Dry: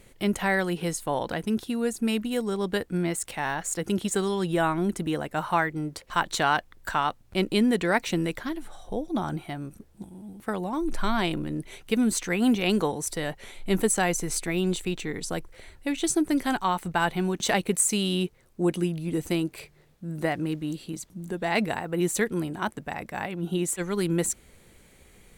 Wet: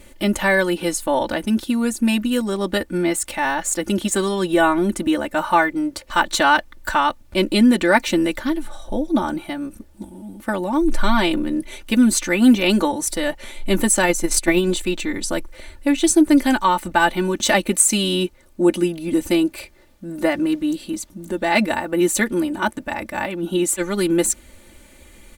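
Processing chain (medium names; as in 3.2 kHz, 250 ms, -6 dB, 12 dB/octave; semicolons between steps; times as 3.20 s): comb 3.4 ms, depth 89%; 14.02–14.71 s: transient shaper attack +11 dB, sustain -6 dB; trim +5.5 dB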